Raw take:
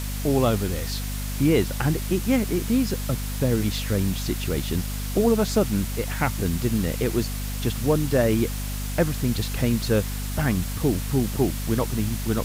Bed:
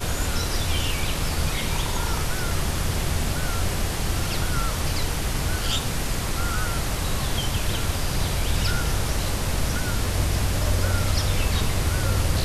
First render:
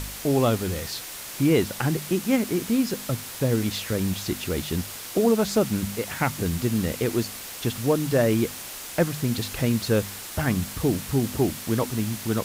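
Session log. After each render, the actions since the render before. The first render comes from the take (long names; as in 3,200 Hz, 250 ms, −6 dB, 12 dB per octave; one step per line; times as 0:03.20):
hum removal 50 Hz, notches 5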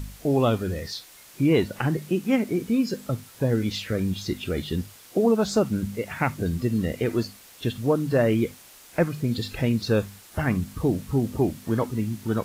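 noise reduction from a noise print 12 dB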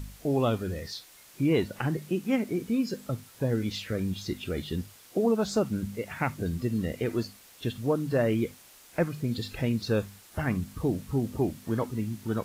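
level −4.5 dB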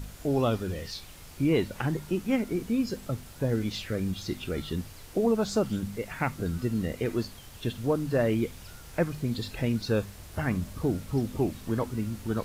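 mix in bed −24 dB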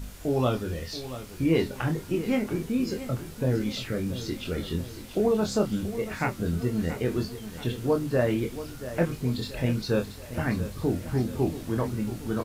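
double-tracking delay 24 ms −5 dB
repeating echo 681 ms, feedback 53%, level −13 dB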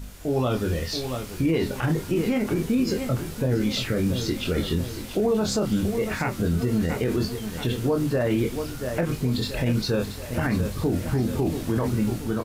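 automatic gain control gain up to 7 dB
brickwall limiter −15 dBFS, peak gain reduction 10.5 dB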